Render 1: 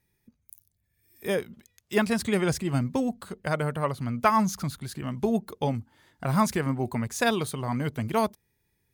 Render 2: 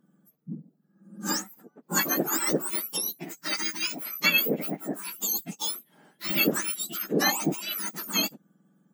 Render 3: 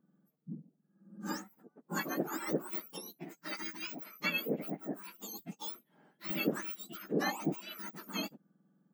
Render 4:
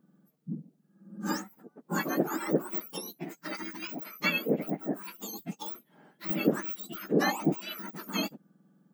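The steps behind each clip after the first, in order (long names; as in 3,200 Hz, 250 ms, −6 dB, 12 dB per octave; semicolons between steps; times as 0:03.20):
frequency axis turned over on the octave scale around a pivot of 1,700 Hz; level +3.5 dB
parametric band 10,000 Hz −13.5 dB 2.5 octaves; level −6.5 dB
de-essing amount 95%; level +7 dB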